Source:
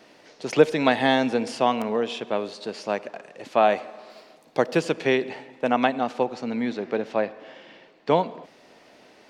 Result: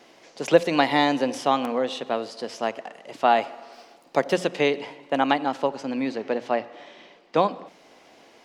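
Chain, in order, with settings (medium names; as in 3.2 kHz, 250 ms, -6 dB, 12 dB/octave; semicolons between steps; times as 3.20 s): tape speed +10%; hum notches 60/120/180 Hz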